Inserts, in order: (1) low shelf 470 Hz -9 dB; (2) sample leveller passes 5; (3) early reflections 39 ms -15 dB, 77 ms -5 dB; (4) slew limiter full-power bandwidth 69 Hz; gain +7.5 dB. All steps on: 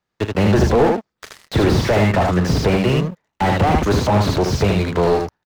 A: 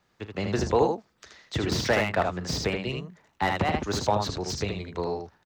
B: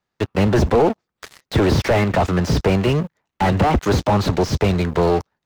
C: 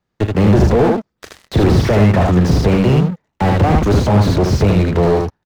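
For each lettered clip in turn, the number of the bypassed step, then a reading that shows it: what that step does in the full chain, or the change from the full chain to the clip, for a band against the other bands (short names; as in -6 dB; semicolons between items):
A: 2, crest factor change +6.5 dB; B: 3, crest factor change -2.5 dB; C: 1, 125 Hz band +6.0 dB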